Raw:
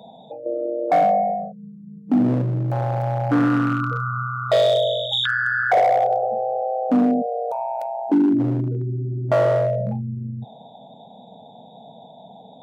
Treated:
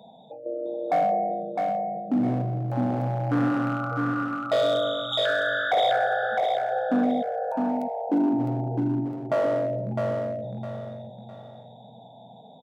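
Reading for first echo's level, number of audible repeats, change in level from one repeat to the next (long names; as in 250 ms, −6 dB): −4.0 dB, 3, −9.5 dB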